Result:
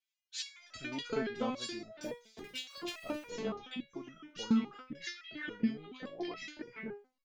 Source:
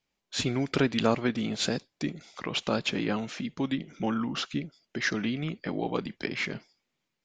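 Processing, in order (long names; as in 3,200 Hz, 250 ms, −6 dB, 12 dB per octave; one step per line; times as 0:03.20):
0:01.92–0:03.26: sub-harmonics by changed cycles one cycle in 3, muted
multiband delay without the direct sound highs, lows 360 ms, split 1,700 Hz
step-sequenced resonator 7.1 Hz 220–650 Hz
level +7.5 dB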